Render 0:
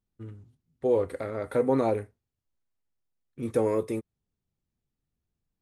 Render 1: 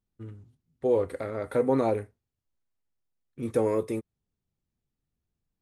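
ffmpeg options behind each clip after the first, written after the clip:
ffmpeg -i in.wav -af anull out.wav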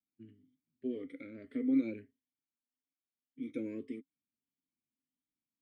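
ffmpeg -i in.wav -filter_complex "[0:a]afftfilt=real='re*pow(10,12/40*sin(2*PI*(1.4*log(max(b,1)*sr/1024/100)/log(2)-(1.7)*(pts-256)/sr)))':imag='im*pow(10,12/40*sin(2*PI*(1.4*log(max(b,1)*sr/1024/100)/log(2)-(1.7)*(pts-256)/sr)))':win_size=1024:overlap=0.75,asplit=3[link_01][link_02][link_03];[link_01]bandpass=frequency=270:width_type=q:width=8,volume=0dB[link_04];[link_02]bandpass=frequency=2290:width_type=q:width=8,volume=-6dB[link_05];[link_03]bandpass=frequency=3010:width_type=q:width=8,volume=-9dB[link_06];[link_04][link_05][link_06]amix=inputs=3:normalize=0" out.wav

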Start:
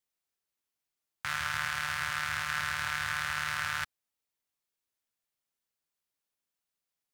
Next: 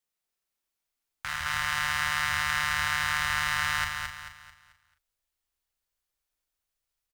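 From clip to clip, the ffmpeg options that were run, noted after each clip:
ffmpeg -i in.wav -filter_complex "[0:a]asplit=2[link_01][link_02];[link_02]adelay=39,volume=-7.5dB[link_03];[link_01][link_03]amix=inputs=2:normalize=0,asplit=2[link_04][link_05];[link_05]aecho=0:1:220|440|660|880|1100:0.631|0.246|0.096|0.0374|0.0146[link_06];[link_04][link_06]amix=inputs=2:normalize=0,asubboost=boost=11.5:cutoff=52" out.wav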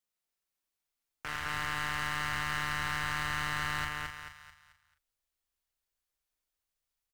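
ffmpeg -i in.wav -af "aeval=exprs='(tanh(22.4*val(0)+0.6)-tanh(0.6))/22.4':channel_layout=same" out.wav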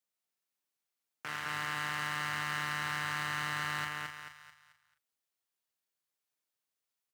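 ffmpeg -i in.wav -af "highpass=frequency=120:width=0.5412,highpass=frequency=120:width=1.3066,volume=-1.5dB" out.wav

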